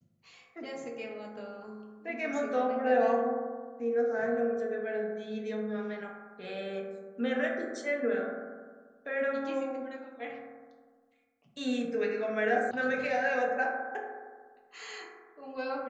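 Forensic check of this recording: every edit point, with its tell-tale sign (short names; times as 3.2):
12.71 sound cut off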